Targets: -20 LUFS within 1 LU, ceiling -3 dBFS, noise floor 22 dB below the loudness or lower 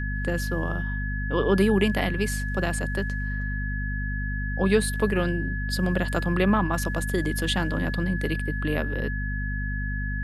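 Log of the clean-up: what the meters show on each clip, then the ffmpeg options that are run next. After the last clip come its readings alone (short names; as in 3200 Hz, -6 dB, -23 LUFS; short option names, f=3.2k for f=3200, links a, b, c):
hum 50 Hz; harmonics up to 250 Hz; hum level -27 dBFS; steady tone 1700 Hz; tone level -33 dBFS; loudness -26.5 LUFS; peak -8.0 dBFS; loudness target -20.0 LUFS
-> -af "bandreject=f=50:t=h:w=6,bandreject=f=100:t=h:w=6,bandreject=f=150:t=h:w=6,bandreject=f=200:t=h:w=6,bandreject=f=250:t=h:w=6"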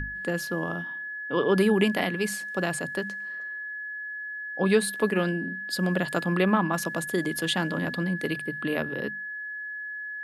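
hum none; steady tone 1700 Hz; tone level -33 dBFS
-> -af "bandreject=f=1.7k:w=30"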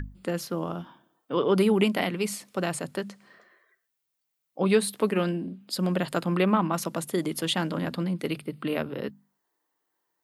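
steady tone none; loudness -27.5 LUFS; peak -9.5 dBFS; loudness target -20.0 LUFS
-> -af "volume=7.5dB,alimiter=limit=-3dB:level=0:latency=1"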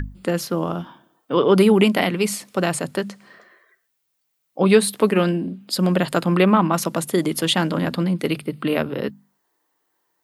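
loudness -20.0 LUFS; peak -3.0 dBFS; noise floor -73 dBFS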